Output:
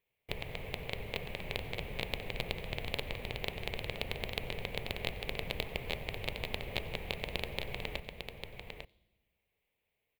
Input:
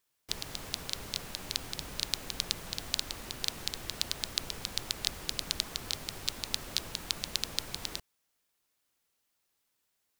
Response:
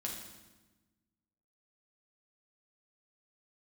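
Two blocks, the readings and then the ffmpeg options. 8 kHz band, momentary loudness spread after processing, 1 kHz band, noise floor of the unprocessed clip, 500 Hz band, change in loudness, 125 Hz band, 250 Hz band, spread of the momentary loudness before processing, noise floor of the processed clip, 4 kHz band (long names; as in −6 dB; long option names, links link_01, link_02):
−19.0 dB, 7 LU, +1.5 dB, −79 dBFS, +8.0 dB, −4.5 dB, +5.5 dB, +1.5 dB, 5 LU, −84 dBFS, −7.0 dB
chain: -filter_complex "[0:a]asplit=2[link_01][link_02];[1:a]atrim=start_sample=2205,adelay=91[link_03];[link_02][link_03]afir=irnorm=-1:irlink=0,volume=-21dB[link_04];[link_01][link_04]amix=inputs=2:normalize=0,aeval=exprs='0.562*(cos(1*acos(clip(val(0)/0.562,-1,1)))-cos(1*PI/2))+0.0631*(cos(8*acos(clip(val(0)/0.562,-1,1)))-cos(8*PI/2))':channel_layout=same,firequalizer=gain_entry='entry(120,0);entry(300,-10);entry(440,2);entry(1400,-17);entry(2200,2);entry(5400,-28);entry(14000,-13)':delay=0.05:min_phase=1,aecho=1:1:850:0.473,volume=4dB"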